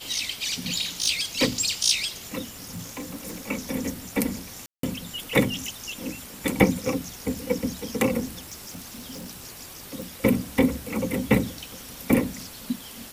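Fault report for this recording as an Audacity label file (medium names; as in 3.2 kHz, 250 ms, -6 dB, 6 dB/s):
0.660000	1.080000	clipped -19 dBFS
2.490000	3.490000	clipped -30 dBFS
4.660000	4.830000	dropout 173 ms
8.430000	9.280000	clipped -33.5 dBFS
10.020000	10.020000	pop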